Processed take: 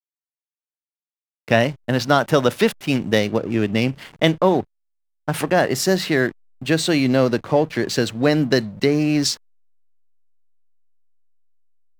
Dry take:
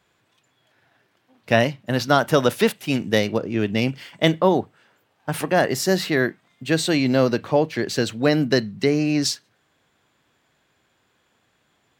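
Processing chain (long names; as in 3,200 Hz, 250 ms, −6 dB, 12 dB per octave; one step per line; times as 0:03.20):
in parallel at +0.5 dB: downward compressor 6 to 1, threshold −25 dBFS, peak gain reduction 13.5 dB
on the sum: slack as between gear wheels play −30 dBFS
level −1 dB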